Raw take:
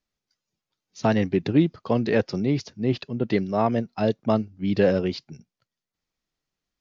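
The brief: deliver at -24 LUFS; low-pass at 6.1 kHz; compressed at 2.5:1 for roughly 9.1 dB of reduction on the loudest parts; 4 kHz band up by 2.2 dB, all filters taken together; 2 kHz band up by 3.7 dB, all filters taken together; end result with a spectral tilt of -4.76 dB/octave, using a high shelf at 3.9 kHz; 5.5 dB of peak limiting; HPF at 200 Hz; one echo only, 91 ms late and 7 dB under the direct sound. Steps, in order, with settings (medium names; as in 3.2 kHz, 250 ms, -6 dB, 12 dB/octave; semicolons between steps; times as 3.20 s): high-pass 200 Hz; low-pass 6.1 kHz; peaking EQ 2 kHz +4.5 dB; treble shelf 3.9 kHz -4 dB; peaking EQ 4 kHz +4.5 dB; compression 2.5:1, threshold -29 dBFS; peak limiter -21 dBFS; delay 91 ms -7 dB; trim +8.5 dB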